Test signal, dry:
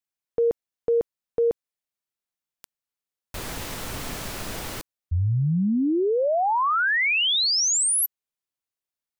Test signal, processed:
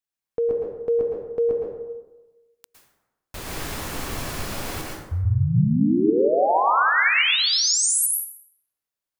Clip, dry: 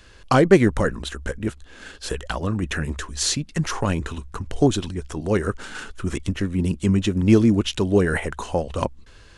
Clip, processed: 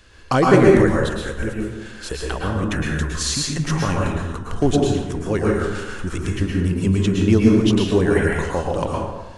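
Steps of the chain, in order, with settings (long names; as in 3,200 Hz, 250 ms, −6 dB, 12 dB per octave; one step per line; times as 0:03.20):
dense smooth reverb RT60 1.1 s, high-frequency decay 0.5×, pre-delay 100 ms, DRR −2.5 dB
level −1.5 dB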